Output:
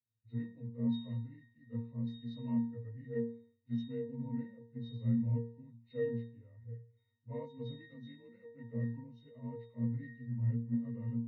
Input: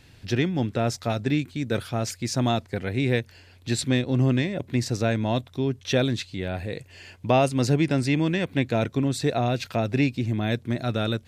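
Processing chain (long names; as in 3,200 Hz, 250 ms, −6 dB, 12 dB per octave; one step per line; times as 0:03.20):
partials spread apart or drawn together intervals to 90%
resonances in every octave A#, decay 0.59 s
multiband upward and downward expander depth 70%
level +1 dB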